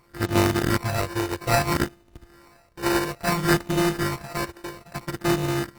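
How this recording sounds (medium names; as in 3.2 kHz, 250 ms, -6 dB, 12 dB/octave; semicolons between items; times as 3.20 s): a buzz of ramps at a fixed pitch in blocks of 128 samples; phasing stages 12, 0.6 Hz, lowest notch 200–1200 Hz; aliases and images of a low sample rate 3.3 kHz, jitter 0%; Opus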